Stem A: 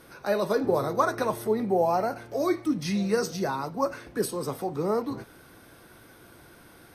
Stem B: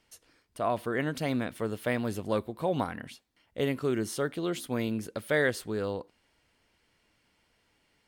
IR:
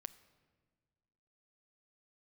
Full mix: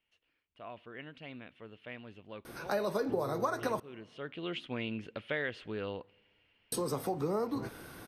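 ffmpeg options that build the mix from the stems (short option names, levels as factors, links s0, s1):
-filter_complex "[0:a]adelay=2450,volume=1.12,asplit=3[s0][s1][s2];[s0]atrim=end=3.8,asetpts=PTS-STARTPTS,afade=t=out:st=3.796:d=0.004:c=hsin[s3];[s1]atrim=start=3.8:end=6.72,asetpts=PTS-STARTPTS,volume=0[s4];[s2]atrim=start=6.72,asetpts=PTS-STARTPTS,afade=t=in:d=0.004:c=hsin[s5];[s3][s4][s5]concat=n=3:v=0:a=1,asplit=2[s6][s7];[s7]volume=0.355[s8];[1:a]lowpass=f=2800:t=q:w=4.1,volume=0.398,afade=t=in:st=4.09:d=0.45:silence=0.251189,asplit=2[s9][s10];[s10]volume=0.376[s11];[2:a]atrim=start_sample=2205[s12];[s8][s11]amix=inputs=2:normalize=0[s13];[s13][s12]afir=irnorm=-1:irlink=0[s14];[s6][s9][s14]amix=inputs=3:normalize=0,acompressor=threshold=0.0282:ratio=4"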